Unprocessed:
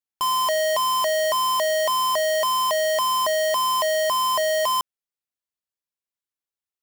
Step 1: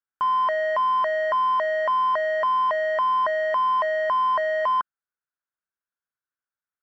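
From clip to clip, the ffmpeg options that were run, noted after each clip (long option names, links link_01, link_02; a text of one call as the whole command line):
ffmpeg -i in.wav -af "lowpass=frequency=1500:width_type=q:width=5.9,volume=-4dB" out.wav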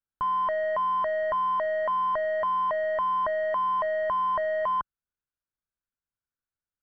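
ffmpeg -i in.wav -af "aemphasis=mode=reproduction:type=riaa,volume=-4.5dB" out.wav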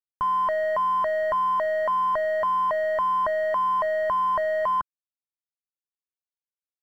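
ffmpeg -i in.wav -af "aeval=exprs='sgn(val(0))*max(abs(val(0))-0.00168,0)':channel_layout=same,volume=3dB" out.wav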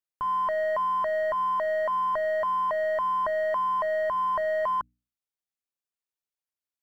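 ffmpeg -i in.wav -af "bandreject=frequency=60:width_type=h:width=6,bandreject=frequency=120:width_type=h:width=6,bandreject=frequency=180:width_type=h:width=6,bandreject=frequency=240:width_type=h:width=6,bandreject=frequency=300:width_type=h:width=6,alimiter=limit=-22.5dB:level=0:latency=1:release=265" out.wav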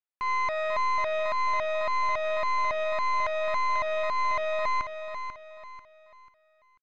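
ffmpeg -i in.wav -filter_complex "[0:a]acrossover=split=490 3700:gain=0.141 1 0.126[link_01][link_02][link_03];[link_01][link_02][link_03]amix=inputs=3:normalize=0,aeval=exprs='0.1*(cos(1*acos(clip(val(0)/0.1,-1,1)))-cos(1*PI/2))+0.0447*(cos(4*acos(clip(val(0)/0.1,-1,1)))-cos(4*PI/2))+0.0224*(cos(6*acos(clip(val(0)/0.1,-1,1)))-cos(6*PI/2))':channel_layout=same,aecho=1:1:491|982|1473|1964:0.376|0.132|0.046|0.0161,volume=-1.5dB" out.wav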